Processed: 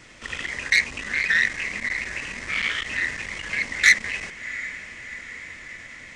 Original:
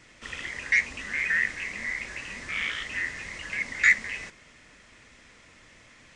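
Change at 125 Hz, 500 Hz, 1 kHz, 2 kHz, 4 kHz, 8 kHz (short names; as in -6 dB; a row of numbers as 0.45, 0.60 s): +5.0, +5.0, +5.0, +4.5, +9.0, +9.0 dB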